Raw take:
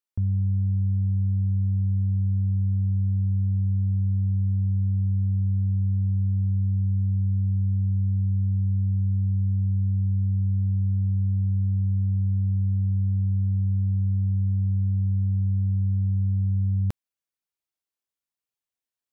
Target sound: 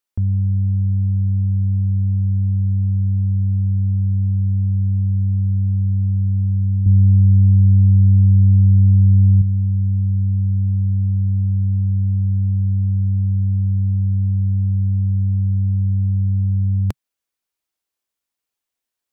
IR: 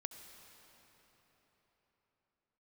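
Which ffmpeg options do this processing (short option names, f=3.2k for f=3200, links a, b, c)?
-filter_complex "[0:a]equalizer=f=140:t=o:w=0.31:g=-13,asettb=1/sr,asplit=3[a][b][c];[a]atrim=end=6.864[d];[b]atrim=start=6.86:end=9.42,asetpts=PTS-STARTPTS,afade=t=in:d=0.004:c=qsin,afade=t=out:st=2.556:d=0.004:c=qsin,acontrast=68[e];[c]atrim=start=9.416[f];[d][e]acrossfade=d=0.004:c1=hsin:c2=qsin[g];[g][f]acrossfade=d=0.004:c1=qsin:c2=hsin,volume=7dB"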